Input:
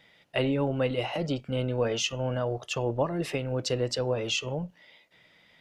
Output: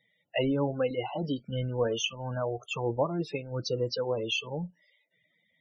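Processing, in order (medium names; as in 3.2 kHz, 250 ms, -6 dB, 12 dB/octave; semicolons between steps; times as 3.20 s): spectral noise reduction 10 dB; loudest bins only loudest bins 32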